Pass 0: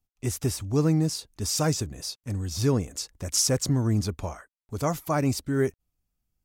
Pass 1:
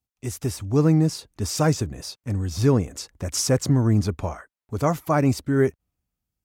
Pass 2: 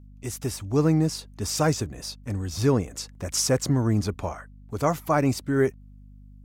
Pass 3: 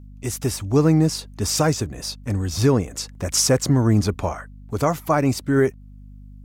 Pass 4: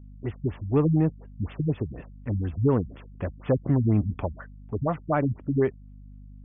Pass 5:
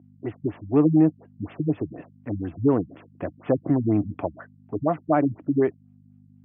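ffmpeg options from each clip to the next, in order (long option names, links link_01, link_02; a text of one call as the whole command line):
ffmpeg -i in.wav -filter_complex "[0:a]highpass=49,acrossover=split=2700[link_01][link_02];[link_01]dynaudnorm=framelen=130:gausssize=9:maxgain=7dB[link_03];[link_03][link_02]amix=inputs=2:normalize=0,volume=-2dB" out.wav
ffmpeg -i in.wav -af "lowshelf=frequency=280:gain=-5,aeval=exprs='val(0)+0.00501*(sin(2*PI*50*n/s)+sin(2*PI*2*50*n/s)/2+sin(2*PI*3*50*n/s)/3+sin(2*PI*4*50*n/s)/4+sin(2*PI*5*50*n/s)/5)':channel_layout=same" out.wav
ffmpeg -i in.wav -af "alimiter=limit=-13.5dB:level=0:latency=1:release=460,volume=6dB" out.wav
ffmpeg -i in.wav -filter_complex "[0:a]asplit=2[link_01][link_02];[link_02]asoftclip=type=hard:threshold=-17.5dB,volume=-10.5dB[link_03];[link_01][link_03]amix=inputs=2:normalize=0,afftfilt=real='re*lt(b*sr/1024,210*pow(3600/210,0.5+0.5*sin(2*PI*4.1*pts/sr)))':imag='im*lt(b*sr/1024,210*pow(3600/210,0.5+0.5*sin(2*PI*4.1*pts/sr)))':win_size=1024:overlap=0.75,volume=-6dB" out.wav
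ffmpeg -i in.wav -af "highpass=frequency=110:width=0.5412,highpass=frequency=110:width=1.3066,equalizer=frequency=130:width_type=q:width=4:gain=-4,equalizer=frequency=210:width_type=q:width=4:gain=-3,equalizer=frequency=310:width_type=q:width=4:gain=9,equalizer=frequency=690:width_type=q:width=4:gain=7,lowpass=frequency=3000:width=0.5412,lowpass=frequency=3000:width=1.3066" out.wav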